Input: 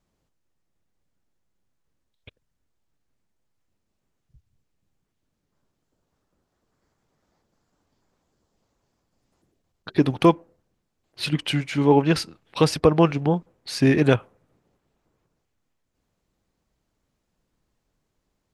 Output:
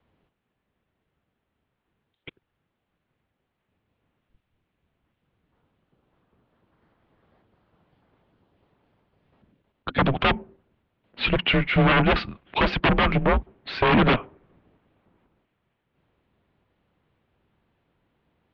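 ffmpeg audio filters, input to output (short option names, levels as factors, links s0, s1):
-af "aeval=exprs='0.0944*(abs(mod(val(0)/0.0944+3,4)-2)-1)':c=same,lowshelf=f=190:g=7,highpass=f=200:t=q:w=0.5412,highpass=f=200:t=q:w=1.307,lowpass=f=3500:t=q:w=0.5176,lowpass=f=3500:t=q:w=0.7071,lowpass=f=3500:t=q:w=1.932,afreqshift=-120,volume=2.51"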